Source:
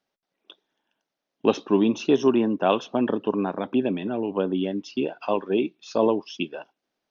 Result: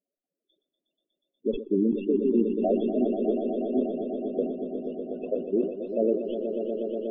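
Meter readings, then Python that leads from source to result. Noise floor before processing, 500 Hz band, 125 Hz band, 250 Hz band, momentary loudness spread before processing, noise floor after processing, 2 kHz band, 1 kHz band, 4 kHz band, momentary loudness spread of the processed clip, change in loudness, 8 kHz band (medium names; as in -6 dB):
-84 dBFS, -2.0 dB, -6.0 dB, -2.5 dB, 7 LU, under -85 dBFS, under -20 dB, -11.5 dB, under -15 dB, 8 LU, -3.0 dB, no reading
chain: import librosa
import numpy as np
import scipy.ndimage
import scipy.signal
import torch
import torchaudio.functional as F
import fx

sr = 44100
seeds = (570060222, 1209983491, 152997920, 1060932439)

y = fx.tracing_dist(x, sr, depth_ms=0.15)
y = scipy.signal.sosfilt(scipy.signal.butter(2, 3600.0, 'lowpass', fs=sr, output='sos'), y)
y = fx.band_shelf(y, sr, hz=1400.0, db=-11.0, octaves=1.7)
y = fx.level_steps(y, sr, step_db=22)
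y = fx.spec_topn(y, sr, count=8)
y = fx.echo_swell(y, sr, ms=121, loudest=5, wet_db=-9.5)
y = fx.sustainer(y, sr, db_per_s=110.0)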